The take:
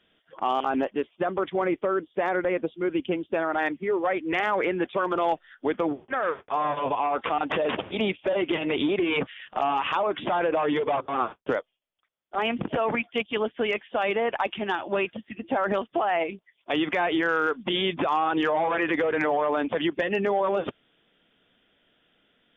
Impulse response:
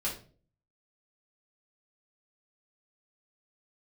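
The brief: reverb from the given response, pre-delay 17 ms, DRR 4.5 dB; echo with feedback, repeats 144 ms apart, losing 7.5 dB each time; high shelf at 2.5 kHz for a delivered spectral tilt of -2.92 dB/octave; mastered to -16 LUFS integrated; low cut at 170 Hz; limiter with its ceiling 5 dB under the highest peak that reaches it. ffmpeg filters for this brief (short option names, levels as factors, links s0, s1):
-filter_complex "[0:a]highpass=170,highshelf=f=2500:g=-5,alimiter=limit=0.112:level=0:latency=1,aecho=1:1:144|288|432|576|720:0.422|0.177|0.0744|0.0312|0.0131,asplit=2[s0][s1];[1:a]atrim=start_sample=2205,adelay=17[s2];[s1][s2]afir=irnorm=-1:irlink=0,volume=0.355[s3];[s0][s3]amix=inputs=2:normalize=0,volume=3.35"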